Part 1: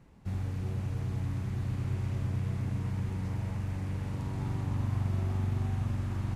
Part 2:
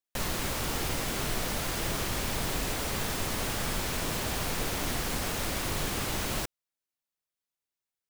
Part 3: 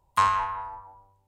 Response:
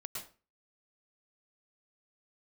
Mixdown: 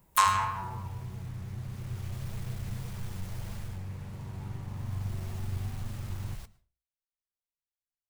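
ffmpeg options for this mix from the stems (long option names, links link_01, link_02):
-filter_complex "[0:a]volume=-3dB,asplit=2[link_01][link_02];[link_02]volume=-12dB[link_03];[1:a]asoftclip=type=hard:threshold=-34.5dB,asubboost=boost=8:cutoff=96,volume=1dB,afade=type=in:start_time=1.62:duration=0.66:silence=0.316228,afade=type=out:start_time=3.58:duration=0.25:silence=0.251189,afade=type=in:start_time=4.69:duration=0.54:silence=0.298538,asplit=2[link_04][link_05];[link_05]volume=-16.5dB[link_06];[2:a]aemphasis=mode=production:type=riaa,volume=1dB,asplit=2[link_07][link_08];[link_08]volume=-12.5dB[link_09];[3:a]atrim=start_sample=2205[link_10];[link_03][link_06][link_09]amix=inputs=3:normalize=0[link_11];[link_11][link_10]afir=irnorm=-1:irlink=0[link_12];[link_01][link_04][link_07][link_12]amix=inputs=4:normalize=0,equalizer=frequency=270:width_type=o:width=0.21:gain=-12,flanger=delay=4.2:depth=7.7:regen=70:speed=1.7:shape=triangular"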